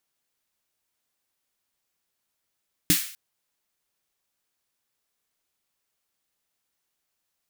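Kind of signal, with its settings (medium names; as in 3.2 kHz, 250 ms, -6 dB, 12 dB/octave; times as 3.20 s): snare drum length 0.25 s, tones 180 Hz, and 300 Hz, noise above 1.6 kHz, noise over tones 0.5 dB, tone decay 0.12 s, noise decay 0.50 s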